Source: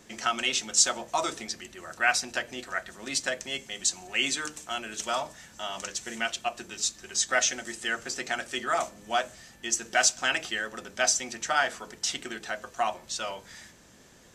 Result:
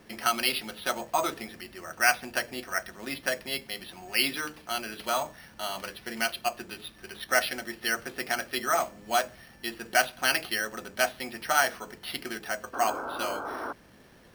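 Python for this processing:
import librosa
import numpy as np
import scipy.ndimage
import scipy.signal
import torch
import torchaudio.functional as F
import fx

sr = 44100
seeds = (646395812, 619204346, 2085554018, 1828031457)

y = np.repeat(scipy.signal.resample_poly(x, 1, 6), 6)[:len(x)]
y = fx.spec_paint(y, sr, seeds[0], shape='noise', start_s=12.73, length_s=1.0, low_hz=240.0, high_hz=1600.0, level_db=-37.0)
y = y * librosa.db_to_amplitude(1.5)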